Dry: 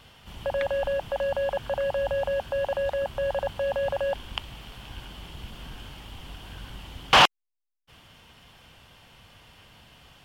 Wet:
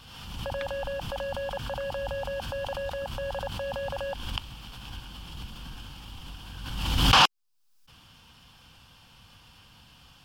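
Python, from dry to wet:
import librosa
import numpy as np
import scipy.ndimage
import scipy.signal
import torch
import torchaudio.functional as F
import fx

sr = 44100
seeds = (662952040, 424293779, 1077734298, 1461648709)

y = fx.graphic_eq_31(x, sr, hz=(400, 630, 2000, 5000), db=(-11, -10, -9, 5))
y = fx.pre_swell(y, sr, db_per_s=41.0)
y = y * librosa.db_to_amplitude(-1.0)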